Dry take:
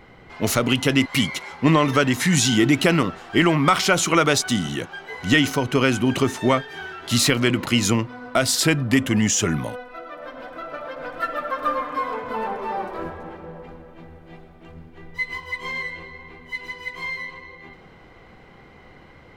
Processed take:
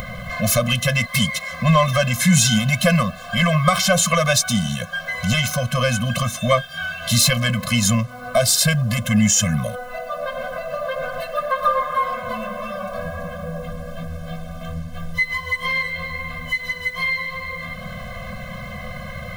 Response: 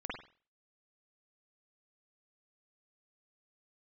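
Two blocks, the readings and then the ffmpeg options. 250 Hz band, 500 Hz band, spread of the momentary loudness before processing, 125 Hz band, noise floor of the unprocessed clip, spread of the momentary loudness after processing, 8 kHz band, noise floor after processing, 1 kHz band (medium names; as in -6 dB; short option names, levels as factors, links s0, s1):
-1.5 dB, +1.0 dB, 17 LU, +5.0 dB, -48 dBFS, 16 LU, +4.5 dB, -34 dBFS, +2.0 dB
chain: -af "acompressor=mode=upward:threshold=0.0794:ratio=2.5,highshelf=f=9000:g=9,acrusher=bits=7:mix=0:aa=0.5,acontrast=32,afftfilt=real='re*eq(mod(floor(b*sr/1024/250),2),0)':imag='im*eq(mod(floor(b*sr/1024/250),2),0)':win_size=1024:overlap=0.75"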